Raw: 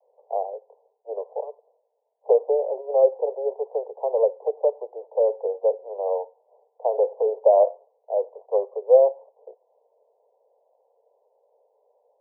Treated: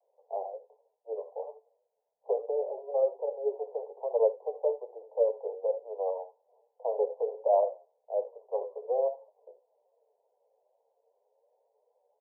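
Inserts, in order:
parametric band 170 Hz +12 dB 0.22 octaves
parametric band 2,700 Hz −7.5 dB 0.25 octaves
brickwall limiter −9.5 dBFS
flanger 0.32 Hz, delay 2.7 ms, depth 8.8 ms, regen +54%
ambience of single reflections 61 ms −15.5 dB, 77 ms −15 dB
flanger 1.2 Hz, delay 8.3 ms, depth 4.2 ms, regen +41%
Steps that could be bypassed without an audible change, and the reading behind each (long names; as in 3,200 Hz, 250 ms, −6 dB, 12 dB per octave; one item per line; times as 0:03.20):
parametric band 170 Hz: nothing at its input below 360 Hz
parametric band 2,700 Hz: nothing at its input above 1,000 Hz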